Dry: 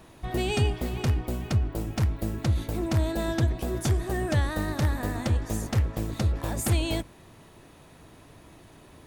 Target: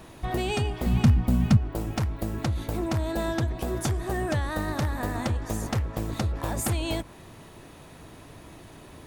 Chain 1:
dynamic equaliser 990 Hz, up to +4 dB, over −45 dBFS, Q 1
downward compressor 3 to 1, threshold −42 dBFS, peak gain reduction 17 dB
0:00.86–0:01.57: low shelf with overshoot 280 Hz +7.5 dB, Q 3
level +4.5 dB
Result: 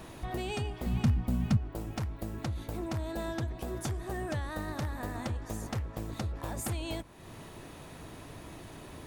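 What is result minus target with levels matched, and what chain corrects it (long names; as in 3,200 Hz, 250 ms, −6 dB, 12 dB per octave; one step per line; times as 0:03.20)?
downward compressor: peak gain reduction +7.5 dB
dynamic equaliser 990 Hz, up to +4 dB, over −45 dBFS, Q 1
downward compressor 3 to 1, threshold −30.5 dBFS, peak gain reduction 9.5 dB
0:00.86–0:01.57: low shelf with overshoot 280 Hz +7.5 dB, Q 3
level +4.5 dB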